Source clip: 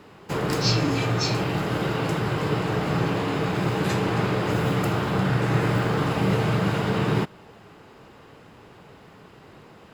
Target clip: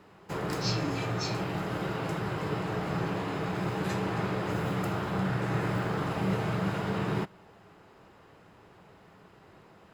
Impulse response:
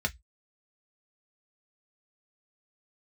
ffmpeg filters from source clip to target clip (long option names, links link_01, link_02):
-filter_complex "[0:a]asplit=2[link_01][link_02];[link_02]highpass=170[link_03];[1:a]atrim=start_sample=2205[link_04];[link_03][link_04]afir=irnorm=-1:irlink=0,volume=-18dB[link_05];[link_01][link_05]amix=inputs=2:normalize=0,volume=-7.5dB"